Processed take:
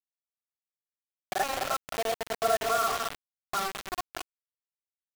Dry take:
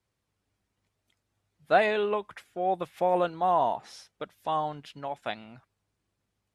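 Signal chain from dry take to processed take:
in parallel at +2.5 dB: downward compressor 4 to 1, threshold −39 dBFS, peak gain reduction 19 dB
on the sum: comb filter 3.6 ms, depth 74%
speed change +27%
Chebyshev band-pass filter 190–2,200 Hz, order 4
phaser with its sweep stopped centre 1,400 Hz, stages 8
single-tap delay 283 ms −17 dB
granular cloud 100 ms, grains 20 per second, spray 100 ms, pitch spread up and down by 0 semitones
feedback echo with a low-pass in the loop 213 ms, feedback 26%, low-pass 1,500 Hz, level −5 dB
bit reduction 5 bits
level −1 dB

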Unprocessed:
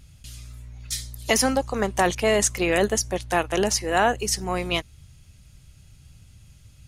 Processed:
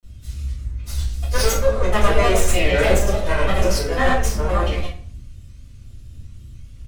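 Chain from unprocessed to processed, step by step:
lower of the sound and its delayed copy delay 1.8 ms
low-shelf EQ 150 Hz +5.5 dB
ambience of single reflections 53 ms −10 dB, 69 ms −17.5 dB
granular cloud, pitch spread up and down by 3 semitones
rectangular room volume 50 cubic metres, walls mixed, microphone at 2.7 metres
level −10 dB

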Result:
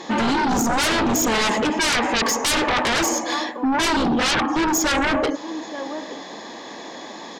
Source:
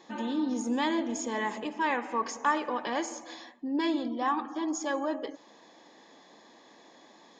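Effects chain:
slap from a distant wall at 150 metres, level −19 dB
sine wavefolder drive 16 dB, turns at −16.5 dBFS

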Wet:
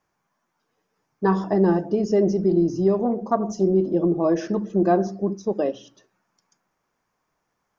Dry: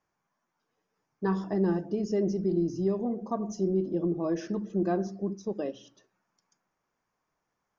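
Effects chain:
dynamic equaliser 740 Hz, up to +6 dB, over −42 dBFS, Q 0.79
0:02.94–0:03.62: highs frequency-modulated by the lows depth 0.11 ms
level +6 dB

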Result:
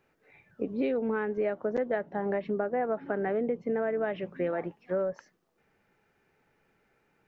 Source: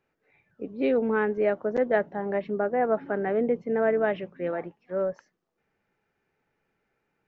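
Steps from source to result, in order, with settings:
downward compressor 6 to 1, threshold −33 dBFS, peak gain reduction 14.5 dB
level +6 dB

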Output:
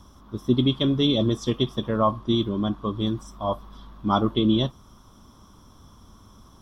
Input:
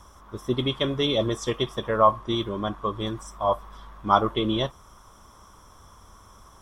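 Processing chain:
octave-band graphic EQ 125/250/500/1,000/2,000/4,000/8,000 Hz +4/+9/−4/−3/−8/+6/−8 dB

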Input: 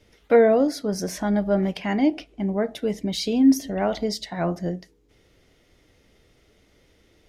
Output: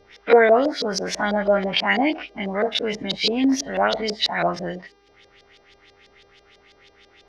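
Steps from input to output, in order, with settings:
every bin's largest magnitude spread in time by 60 ms
auto-filter low-pass saw up 6.1 Hz 460–4,900 Hz
tilt shelving filter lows −7.5 dB, about 850 Hz
hum with harmonics 400 Hz, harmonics 15, −60 dBFS −5 dB per octave

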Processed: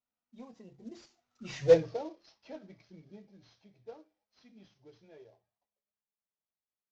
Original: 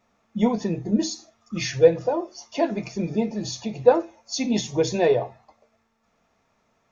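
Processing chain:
variable-slope delta modulation 32 kbit/s
source passing by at 0:01.74, 26 m/s, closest 2.5 metres
level −5 dB

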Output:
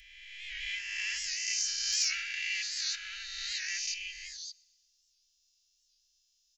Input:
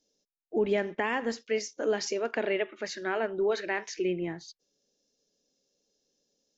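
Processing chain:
peak hold with a rise ahead of every peak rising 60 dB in 1.94 s
inverse Chebyshev band-stop filter 150–860 Hz, stop band 60 dB
comb filter 3 ms, depth 84%
0:00.96–0:02.96: transient designer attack +2 dB, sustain +6 dB
hard clipping −20 dBFS, distortion −35 dB
delay with a high-pass on its return 122 ms, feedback 55%, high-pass 3,600 Hz, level −23 dB
wow of a warped record 78 rpm, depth 100 cents

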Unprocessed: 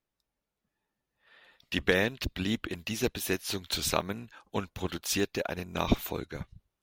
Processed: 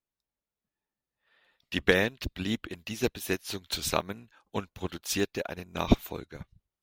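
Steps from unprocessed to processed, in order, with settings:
expander for the loud parts 1.5 to 1, over −44 dBFS
level +4 dB

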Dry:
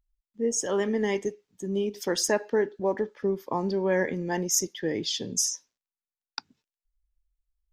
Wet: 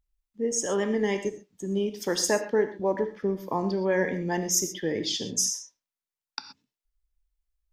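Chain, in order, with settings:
reverb whose tail is shaped and stops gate 150 ms flat, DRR 8 dB

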